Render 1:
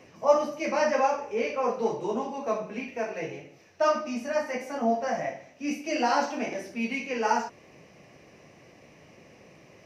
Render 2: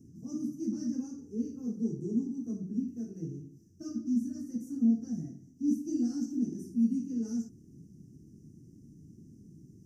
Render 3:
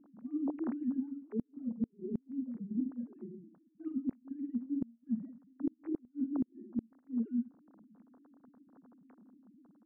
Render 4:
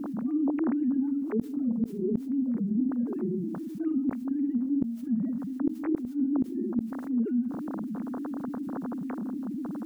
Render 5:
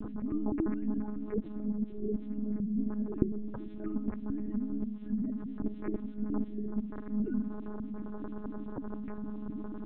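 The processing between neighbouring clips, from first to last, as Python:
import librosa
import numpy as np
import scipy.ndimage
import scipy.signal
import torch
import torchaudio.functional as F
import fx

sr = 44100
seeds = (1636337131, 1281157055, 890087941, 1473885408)

y1 = scipy.signal.sosfilt(scipy.signal.cheby2(4, 40, [530.0, 4000.0], 'bandstop', fs=sr, output='sos'), x)
y1 = fx.high_shelf(y1, sr, hz=4400.0, db=-9.0)
y1 = F.gain(torch.from_numpy(y1), 5.5).numpy()
y2 = fx.sine_speech(y1, sr)
y2 = fx.gate_flip(y2, sr, shuts_db=-23.0, range_db=-35)
y3 = fx.env_flatten(y2, sr, amount_pct=70)
y3 = F.gain(torch.from_numpy(y3), 4.5).numpy()
y4 = fx.echo_wet_bandpass(y3, sr, ms=422, feedback_pct=54, hz=670.0, wet_db=-13)
y4 = fx.lpc_monotone(y4, sr, seeds[0], pitch_hz=210.0, order=10)
y4 = F.gain(torch.from_numpy(y4), -4.5).numpy()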